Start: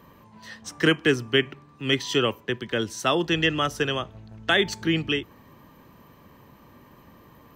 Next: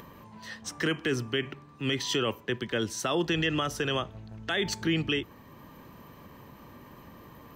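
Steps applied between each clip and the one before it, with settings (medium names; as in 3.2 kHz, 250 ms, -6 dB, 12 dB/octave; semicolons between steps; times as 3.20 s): upward compressor, threshold -44 dBFS; peak limiter -18.5 dBFS, peak gain reduction 10.5 dB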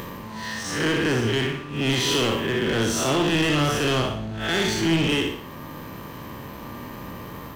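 spectral blur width 155 ms; waveshaping leveller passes 3; flutter echo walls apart 10.4 m, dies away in 0.49 s; trim +3 dB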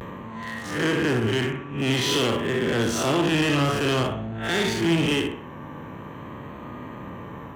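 local Wiener filter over 9 samples; vibrato 0.49 Hz 51 cents; high-pass 66 Hz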